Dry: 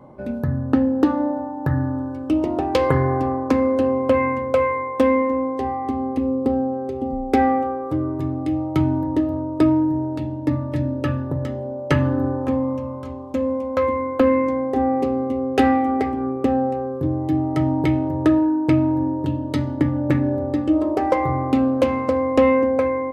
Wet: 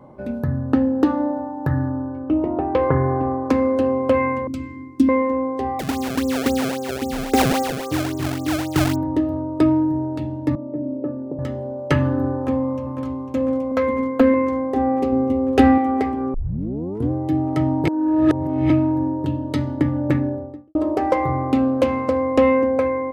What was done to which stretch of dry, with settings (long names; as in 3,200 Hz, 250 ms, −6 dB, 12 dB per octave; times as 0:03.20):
0:01.88–0:03.45: low-pass filter 1,700 Hz
0:04.47–0:05.09: drawn EQ curve 140 Hz 0 dB, 330 Hz +7 dB, 480 Hz −28 dB, 1,800 Hz −17 dB, 4,900 Hz +1 dB
0:05.79–0:08.96: sample-and-hold swept by an LFO 27×, swing 160% 3.7 Hz
0:10.55–0:11.39: flat-topped band-pass 380 Hz, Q 0.88
0:12.36–0:13.08: delay throw 500 ms, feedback 85%, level −9.5 dB
0:13.71–0:14.34: comb filter 4.4 ms
0:15.12–0:15.78: low-shelf EQ 230 Hz +9 dB
0:16.34: tape start 0.77 s
0:17.87–0:18.70: reverse
0:20.06–0:20.75: fade out and dull